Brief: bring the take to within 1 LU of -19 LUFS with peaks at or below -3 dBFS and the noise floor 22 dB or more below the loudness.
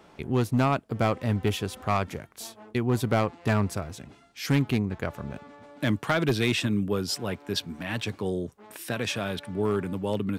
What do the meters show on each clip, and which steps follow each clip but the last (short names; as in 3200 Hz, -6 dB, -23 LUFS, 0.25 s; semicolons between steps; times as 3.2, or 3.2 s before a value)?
clipped 0.8%; flat tops at -16.5 dBFS; loudness -28.0 LUFS; peak -16.5 dBFS; loudness target -19.0 LUFS
-> clip repair -16.5 dBFS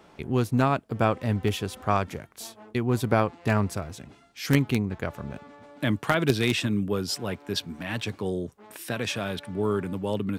clipped 0.0%; loudness -27.5 LUFS; peak -7.5 dBFS; loudness target -19.0 LUFS
-> gain +8.5 dB; limiter -3 dBFS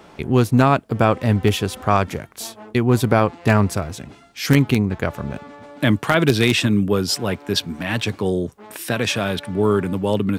loudness -19.5 LUFS; peak -3.0 dBFS; noise floor -47 dBFS